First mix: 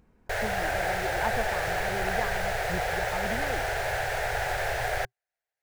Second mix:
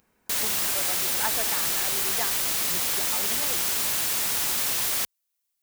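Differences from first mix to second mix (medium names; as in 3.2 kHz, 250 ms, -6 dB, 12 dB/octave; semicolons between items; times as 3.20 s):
background: remove FFT filter 120 Hz 0 dB, 270 Hz -30 dB, 390 Hz +1 dB, 740 Hz +14 dB, 1.1 kHz -6 dB, 1.6 kHz +12 dB, 3 kHz -2 dB, 12 kHz -8 dB; master: add tilt EQ +3.5 dB/octave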